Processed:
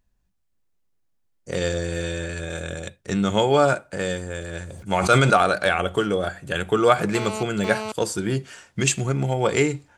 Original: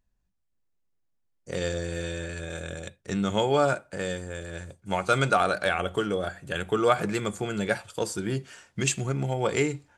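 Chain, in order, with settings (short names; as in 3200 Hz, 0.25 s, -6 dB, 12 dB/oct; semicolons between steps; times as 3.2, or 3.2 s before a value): 4.67–5.36 sustainer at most 27 dB/s; 7.15–7.92 GSM buzz -35 dBFS; gain +5 dB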